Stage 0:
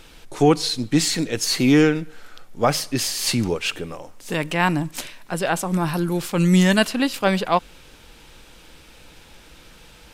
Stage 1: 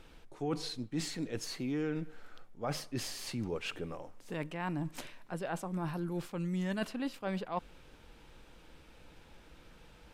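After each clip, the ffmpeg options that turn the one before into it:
-af "highshelf=f=2600:g=-10.5,areverse,acompressor=threshold=0.0501:ratio=4,areverse,volume=0.398"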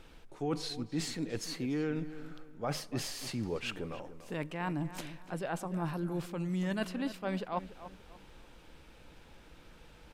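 -filter_complex "[0:a]asplit=2[s0][s1];[s1]adelay=291,lowpass=f=2600:p=1,volume=0.224,asplit=2[s2][s3];[s3]adelay=291,lowpass=f=2600:p=1,volume=0.33,asplit=2[s4][s5];[s5]adelay=291,lowpass=f=2600:p=1,volume=0.33[s6];[s0][s2][s4][s6]amix=inputs=4:normalize=0,volume=1.12"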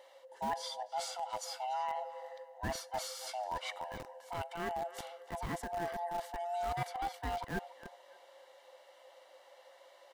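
-filter_complex "[0:a]afftfilt=real='real(if(lt(b,1008),b+24*(1-2*mod(floor(b/24),2)),b),0)':imag='imag(if(lt(b,1008),b+24*(1-2*mod(floor(b/24),2)),b),0)':win_size=2048:overlap=0.75,asuperstop=centerf=2500:order=4:qfactor=7.8,acrossover=split=440|1900[s0][s1][s2];[s0]acrusher=bits=6:mix=0:aa=0.000001[s3];[s3][s1][s2]amix=inputs=3:normalize=0,volume=0.75"

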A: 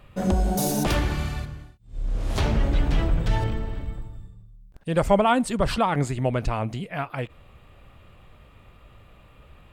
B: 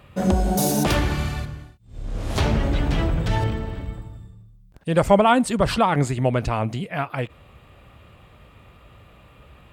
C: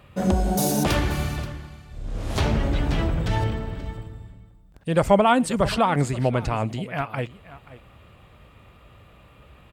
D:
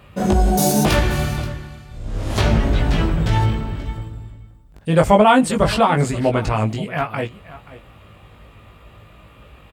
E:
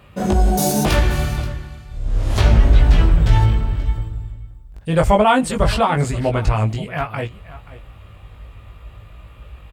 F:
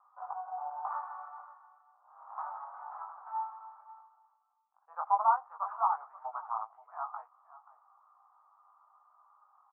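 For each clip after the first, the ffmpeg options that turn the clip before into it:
-af "highpass=53,volume=1.5"
-af "aecho=1:1:530:0.133,volume=0.841"
-filter_complex "[0:a]asplit=2[s0][s1];[s1]adelay=19,volume=0.708[s2];[s0][s2]amix=inputs=2:normalize=0,volume=1.5"
-af "asubboost=boost=4:cutoff=97,volume=0.891"
-af "asuperpass=centerf=1000:order=8:qfactor=1.9,volume=0.398"

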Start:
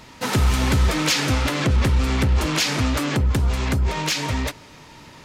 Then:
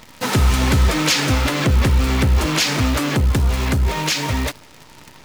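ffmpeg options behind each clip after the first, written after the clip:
-af "acrusher=bits=7:dc=4:mix=0:aa=0.000001,volume=1.41"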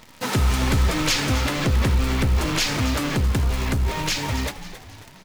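-filter_complex "[0:a]asplit=5[s0][s1][s2][s3][s4];[s1]adelay=271,afreqshift=-85,volume=0.237[s5];[s2]adelay=542,afreqshift=-170,volume=0.102[s6];[s3]adelay=813,afreqshift=-255,volume=0.0437[s7];[s4]adelay=1084,afreqshift=-340,volume=0.0188[s8];[s0][s5][s6][s7][s8]amix=inputs=5:normalize=0,volume=0.596"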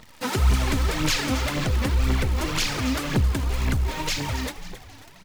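-af "aphaser=in_gain=1:out_gain=1:delay=4.1:decay=0.53:speed=1.9:type=triangular,volume=0.631"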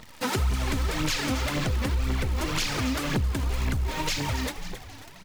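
-af "acompressor=threshold=0.0501:ratio=3,volume=1.19"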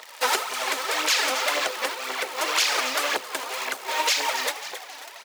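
-af "highpass=f=500:w=0.5412,highpass=f=500:w=1.3066,volume=2.37"

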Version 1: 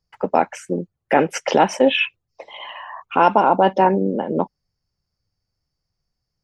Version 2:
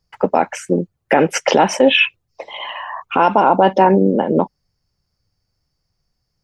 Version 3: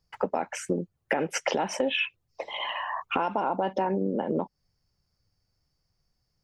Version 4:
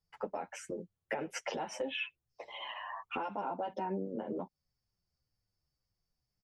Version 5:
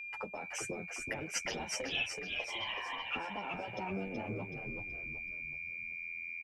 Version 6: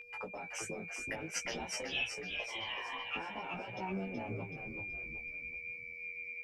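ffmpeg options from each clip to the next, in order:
-af "alimiter=level_in=2.37:limit=0.891:release=50:level=0:latency=1,volume=0.891"
-af "acompressor=threshold=0.1:ratio=6,volume=0.631"
-filter_complex "[0:a]asplit=2[s0][s1];[s1]adelay=8.3,afreqshift=-2[s2];[s0][s2]amix=inputs=2:normalize=1,volume=0.422"
-filter_complex "[0:a]aeval=exprs='val(0)+0.00355*sin(2*PI*2400*n/s)':c=same,acrossover=split=140|3000[s0][s1][s2];[s1]acompressor=threshold=0.00355:ratio=5[s3];[s0][s3][s2]amix=inputs=3:normalize=0,asplit=7[s4][s5][s6][s7][s8][s9][s10];[s5]adelay=376,afreqshift=-84,volume=0.562[s11];[s6]adelay=752,afreqshift=-168,volume=0.263[s12];[s7]adelay=1128,afreqshift=-252,volume=0.124[s13];[s8]adelay=1504,afreqshift=-336,volume=0.0582[s14];[s9]adelay=1880,afreqshift=-420,volume=0.0275[s15];[s10]adelay=2256,afreqshift=-504,volume=0.0129[s16];[s4][s11][s12][s13][s14][s15][s16]amix=inputs=7:normalize=0,volume=2.37"
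-af "flanger=delay=16:depth=2.8:speed=0.51,aeval=exprs='val(0)+0.000631*sin(2*PI*480*n/s)':c=same,volume=1.19"

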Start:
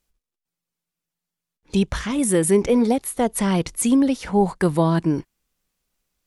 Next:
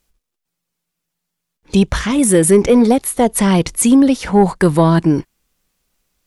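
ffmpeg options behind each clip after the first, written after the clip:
-af "acontrast=62,volume=1.19"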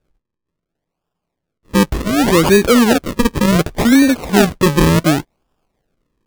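-af "acrusher=samples=42:mix=1:aa=0.000001:lfo=1:lforange=42:lforate=0.68"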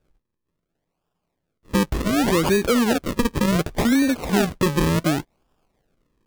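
-af "acompressor=threshold=0.1:ratio=2.5"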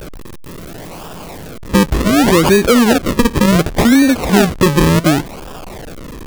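-af "aeval=exprs='val(0)+0.5*0.0266*sgn(val(0))':c=same,volume=2.51"

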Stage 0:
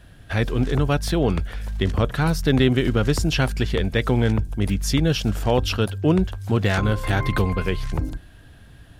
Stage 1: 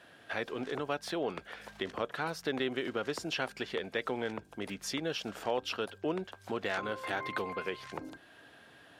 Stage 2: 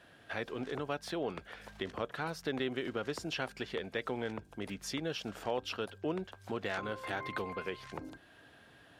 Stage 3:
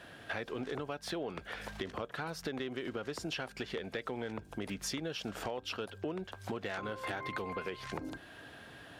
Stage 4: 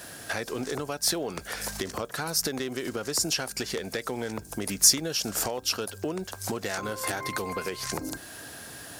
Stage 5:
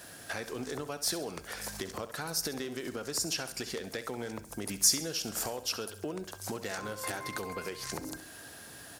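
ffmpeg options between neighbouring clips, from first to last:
-af "highpass=410,highshelf=f=6100:g=-11.5,acompressor=threshold=0.00501:ratio=1.5"
-af "lowshelf=f=120:g=10.5,volume=0.708"
-af "acompressor=threshold=0.00794:ratio=6,asoftclip=type=tanh:threshold=0.0266,volume=2.37"
-af "aexciter=amount=6.8:drive=5.1:freq=4700,volume=2.11"
-af "aecho=1:1:67|134|201|268|335:0.224|0.103|0.0474|0.0218|0.01,volume=0.501"

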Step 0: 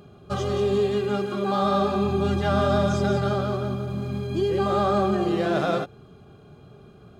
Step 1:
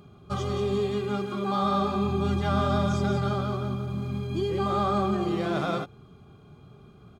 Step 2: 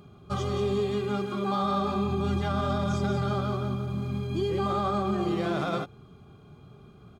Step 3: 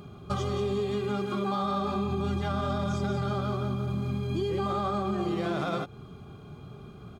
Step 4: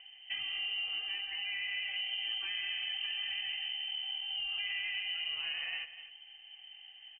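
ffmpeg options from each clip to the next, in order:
-af "aecho=1:1:0.9:0.35,volume=0.668"
-af "alimiter=limit=0.112:level=0:latency=1:release=44"
-af "acompressor=threshold=0.02:ratio=3,volume=1.88"
-af "lowpass=f=2700:t=q:w=0.5098,lowpass=f=2700:t=q:w=0.6013,lowpass=f=2700:t=q:w=0.9,lowpass=f=2700:t=q:w=2.563,afreqshift=-3200,aecho=1:1:250:0.2,volume=0.376"

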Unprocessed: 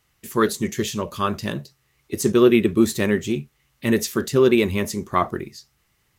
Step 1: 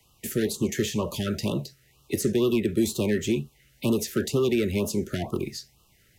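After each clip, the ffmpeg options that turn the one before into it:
-filter_complex "[0:a]acrossover=split=95|300|1800[s0][s1][s2][s3];[s0]acompressor=threshold=0.00562:ratio=4[s4];[s1]acompressor=threshold=0.0178:ratio=4[s5];[s2]acompressor=threshold=0.0398:ratio=4[s6];[s3]acompressor=threshold=0.0126:ratio=4[s7];[s4][s5][s6][s7]amix=inputs=4:normalize=0,acrossover=split=330|4400[s8][s9][s10];[s9]asoftclip=type=tanh:threshold=0.0282[s11];[s8][s11][s10]amix=inputs=3:normalize=0,afftfilt=real='re*(1-between(b*sr/1024,880*pow(1900/880,0.5+0.5*sin(2*PI*2.1*pts/sr))/1.41,880*pow(1900/880,0.5+0.5*sin(2*PI*2.1*pts/sr))*1.41))':imag='im*(1-between(b*sr/1024,880*pow(1900/880,0.5+0.5*sin(2*PI*2.1*pts/sr))/1.41,880*pow(1900/880,0.5+0.5*sin(2*PI*2.1*pts/sr))*1.41))':win_size=1024:overlap=0.75,volume=1.88"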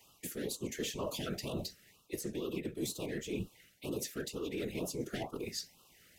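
-af "highpass=f=270:p=1,areverse,acompressor=threshold=0.0178:ratio=20,areverse,afftfilt=real='hypot(re,im)*cos(2*PI*random(0))':imag='hypot(re,im)*sin(2*PI*random(1))':win_size=512:overlap=0.75,volume=2.11"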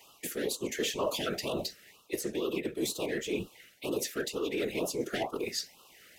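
-af "bass=f=250:g=-12,treble=f=4000:g=-4,volume=2.66"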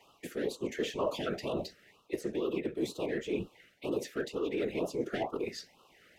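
-af "lowpass=f=1700:p=1"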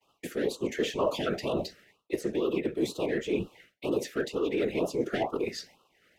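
-af "agate=range=0.0224:threshold=0.002:ratio=3:detection=peak,volume=1.68"

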